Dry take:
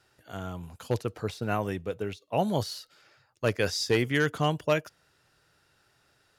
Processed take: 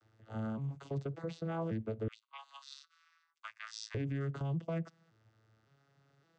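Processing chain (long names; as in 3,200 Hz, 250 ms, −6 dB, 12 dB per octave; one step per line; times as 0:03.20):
vocoder with an arpeggio as carrier major triad, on A2, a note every 566 ms
downward compressor, threshold −28 dBFS, peak gain reduction 8 dB
0:02.08–0:03.95: elliptic high-pass filter 1,100 Hz, stop band 60 dB
brickwall limiter −32 dBFS, peak gain reduction 11.5 dB
level +3 dB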